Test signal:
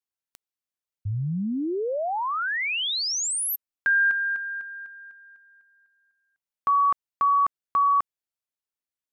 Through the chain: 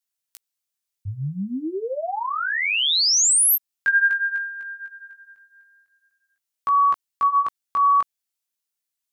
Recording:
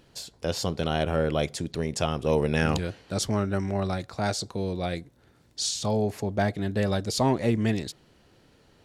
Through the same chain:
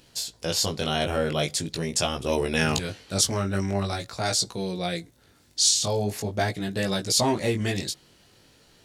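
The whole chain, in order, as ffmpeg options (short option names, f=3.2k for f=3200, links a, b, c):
-af "highshelf=f=2.6k:g=12,flanger=delay=16:depth=5.3:speed=0.44,volume=2dB"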